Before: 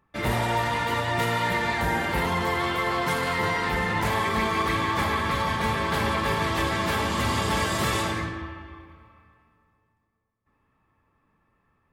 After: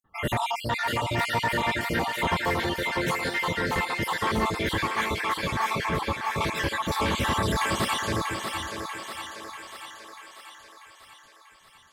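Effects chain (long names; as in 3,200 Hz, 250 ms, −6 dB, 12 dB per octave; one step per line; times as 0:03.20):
time-frequency cells dropped at random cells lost 60%
in parallel at −8 dB: wave folding −26 dBFS
0:05.89–0:06.36: on the sum: low-pass filter 1,200 Hz 6 dB per octave
feedback echo with a high-pass in the loop 640 ms, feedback 61%, high-pass 370 Hz, level −5 dB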